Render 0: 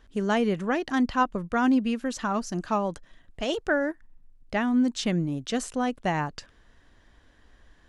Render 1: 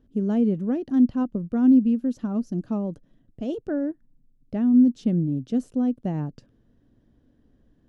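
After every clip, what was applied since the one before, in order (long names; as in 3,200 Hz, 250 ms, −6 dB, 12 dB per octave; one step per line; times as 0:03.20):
octave-band graphic EQ 125/250/500/1,000/2,000/4,000/8,000 Hz +11/+12/+4/−7/−10/−5/−10 dB
level −8 dB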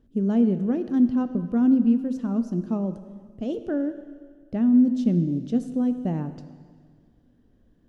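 dense smooth reverb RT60 1.8 s, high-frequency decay 1×, DRR 10 dB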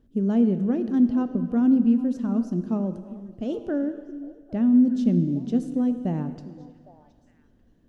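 echo through a band-pass that steps 404 ms, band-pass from 280 Hz, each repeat 1.4 octaves, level −12 dB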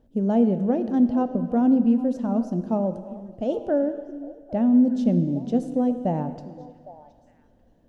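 flat-topped bell 680 Hz +9.5 dB 1.1 octaves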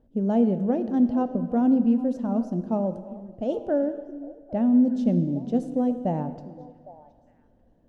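one half of a high-frequency compander decoder only
level −1.5 dB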